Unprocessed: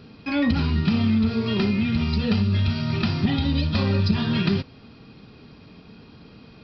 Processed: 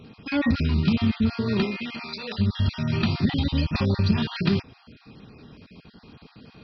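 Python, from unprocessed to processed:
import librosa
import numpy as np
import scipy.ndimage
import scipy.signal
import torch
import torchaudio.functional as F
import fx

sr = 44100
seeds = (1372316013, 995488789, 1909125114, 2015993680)

y = fx.spec_dropout(x, sr, seeds[0], share_pct=27)
y = fx.highpass(y, sr, hz=fx.line((1.63, 290.0), (2.38, 720.0)), slope=12, at=(1.63, 2.38), fade=0.02)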